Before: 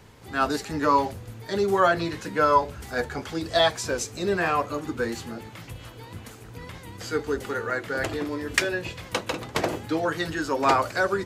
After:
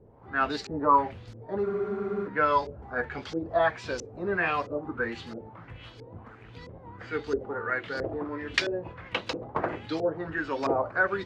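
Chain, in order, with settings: LFO low-pass saw up 1.5 Hz 420–5600 Hz; spectral freeze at 1.68, 0.58 s; gain -5.5 dB

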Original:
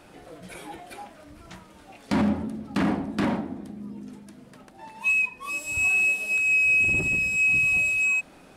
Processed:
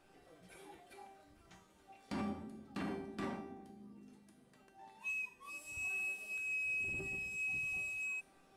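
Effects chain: resonator 390 Hz, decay 0.65 s, mix 90%; gain +1 dB

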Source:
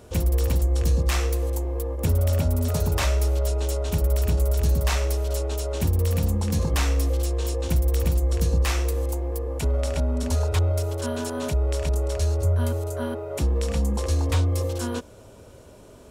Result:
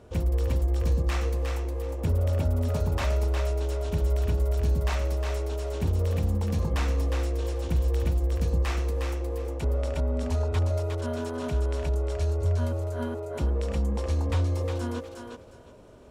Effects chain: LPF 2500 Hz 6 dB/oct; thinning echo 0.359 s, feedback 23%, level -4.5 dB; gain -3.5 dB

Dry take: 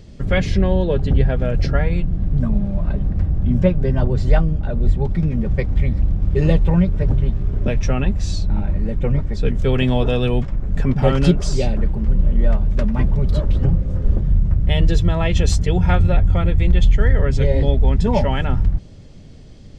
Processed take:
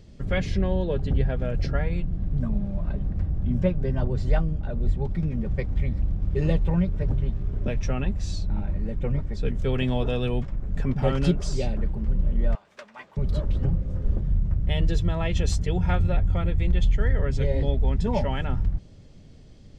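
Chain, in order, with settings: 12.55–13.17 HPF 980 Hz 12 dB/oct; gain -7.5 dB

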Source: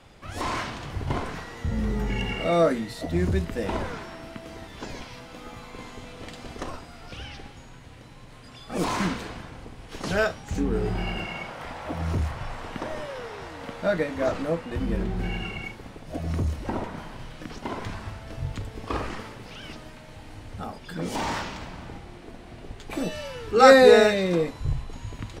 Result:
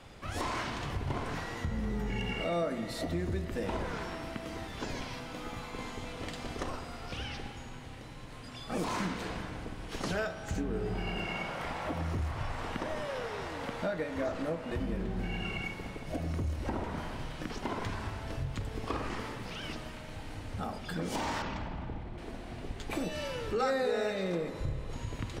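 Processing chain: 21.42–22.18 formant sharpening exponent 1.5; compressor 4:1, threshold -32 dBFS, peak gain reduction 19.5 dB; spring tank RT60 2.8 s, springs 52 ms, chirp 65 ms, DRR 9.5 dB

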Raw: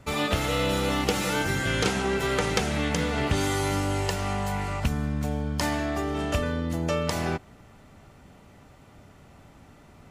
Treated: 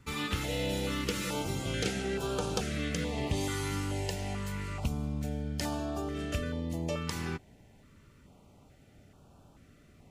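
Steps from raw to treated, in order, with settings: stepped notch 2.3 Hz 640–2000 Hz; gain -6 dB

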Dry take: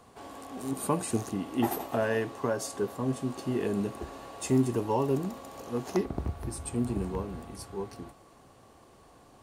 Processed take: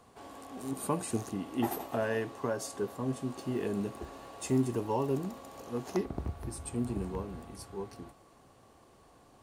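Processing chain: 3.36–5.26 crackle 33/s -41 dBFS; gain -3.5 dB

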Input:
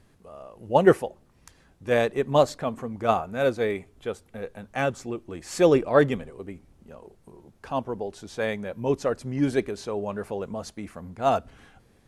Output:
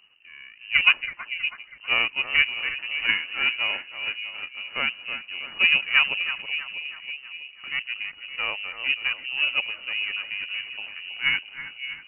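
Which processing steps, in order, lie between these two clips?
half-wave gain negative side -7 dB; split-band echo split 730 Hz, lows 0.566 s, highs 0.323 s, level -10 dB; inverted band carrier 2900 Hz

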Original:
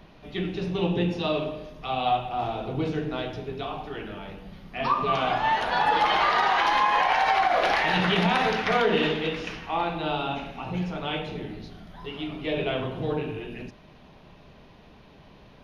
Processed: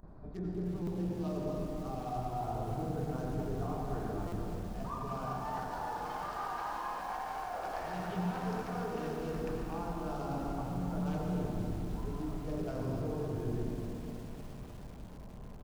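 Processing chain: Wiener smoothing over 15 samples; reverse; compressor 20:1, threshold -33 dBFS, peak gain reduction 15.5 dB; reverse; band shelf 2700 Hz -9 dB 1.3 oct; notch 2000 Hz, Q 24; feedback echo 0.252 s, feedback 20%, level -8.5 dB; gate with hold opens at -43 dBFS; low shelf 130 Hz +11.5 dB; upward compressor, threshold -47 dBFS; on a send at -1.5 dB: reverb RT60 2.2 s, pre-delay 77 ms; on the sum: stuck buffer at 0.82/4.27, samples 256, times 8; lo-fi delay 0.303 s, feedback 80%, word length 7-bit, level -12 dB; gain -5 dB

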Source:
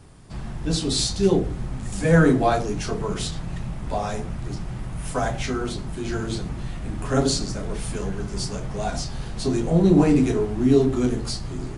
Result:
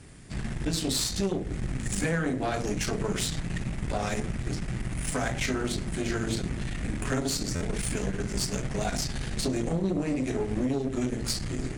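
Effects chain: graphic EQ 250/1000/2000/8000 Hz +3/-6/+8/+6 dB; compressor 16:1, threshold -23 dBFS, peak gain reduction 14.5 dB; tube stage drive 23 dB, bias 0.75; stuck buffer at 7.55, samples 512, times 4; gain +3 dB

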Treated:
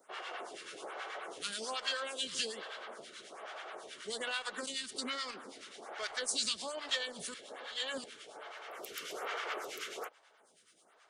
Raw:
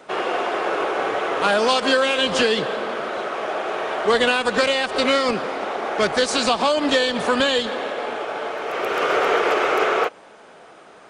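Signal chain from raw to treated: pre-emphasis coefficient 0.9; notch 2500 Hz, Q 15; harmonic tremolo 9.3 Hz, depth 70%, crossover 980 Hz; 4.52–5.52 fifteen-band EQ 250 Hz +8 dB, 630 Hz -8 dB, 2500 Hz -3 dB; 7.34–8.04 reverse; photocell phaser 1.2 Hz

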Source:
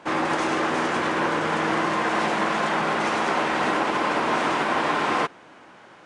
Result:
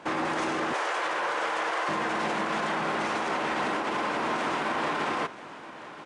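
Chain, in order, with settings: 0.73–1.89 HPF 470 Hz 24 dB/oct; limiter -20.5 dBFS, peak gain reduction 9.5 dB; echo 0.979 s -16 dB

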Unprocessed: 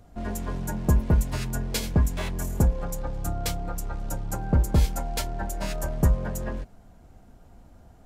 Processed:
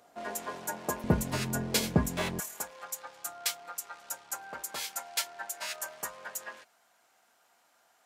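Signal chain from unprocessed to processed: HPF 550 Hz 12 dB/oct, from 1.04 s 160 Hz, from 2.4 s 1300 Hz; gain +1.5 dB

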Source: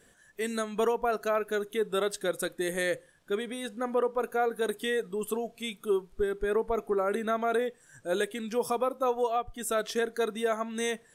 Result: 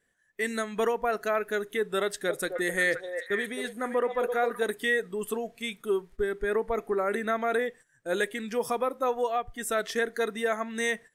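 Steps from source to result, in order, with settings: gate -47 dBFS, range -16 dB; bell 1900 Hz +9 dB 0.46 oct; 2.03–4.63 delay with a stepping band-pass 0.262 s, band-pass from 600 Hz, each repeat 1.4 oct, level -3.5 dB

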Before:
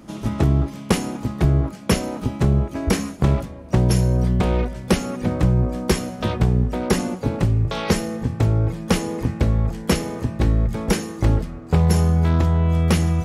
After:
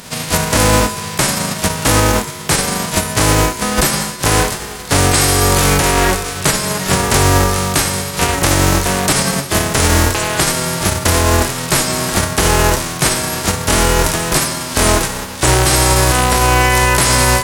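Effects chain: spectral whitening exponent 0.3; dynamic EQ 4600 Hz, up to -5 dB, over -33 dBFS, Q 0.87; resonator 120 Hz, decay 1.9 s, mix 60%; varispeed -24%; maximiser +18 dB; gain -1 dB

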